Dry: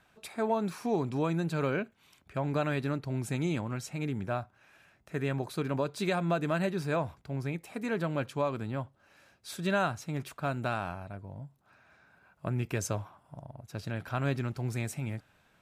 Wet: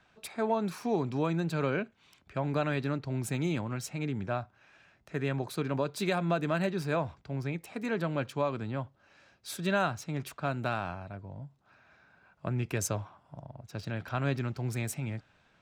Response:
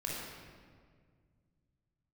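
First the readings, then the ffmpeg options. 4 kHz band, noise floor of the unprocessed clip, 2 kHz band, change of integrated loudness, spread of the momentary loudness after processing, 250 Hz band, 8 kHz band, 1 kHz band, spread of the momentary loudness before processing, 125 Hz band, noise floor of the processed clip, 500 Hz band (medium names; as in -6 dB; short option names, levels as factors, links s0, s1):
+1.0 dB, -67 dBFS, +0.5 dB, 0.0 dB, 13 LU, 0.0 dB, +2.5 dB, 0.0 dB, 14 LU, 0.0 dB, -67 dBFS, 0.0 dB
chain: -filter_complex "[0:a]highshelf=f=7500:g=9,acrossover=split=150|6500[s0][s1][s2];[s2]aeval=exprs='sgn(val(0))*max(abs(val(0))-0.00299,0)':c=same[s3];[s0][s1][s3]amix=inputs=3:normalize=0"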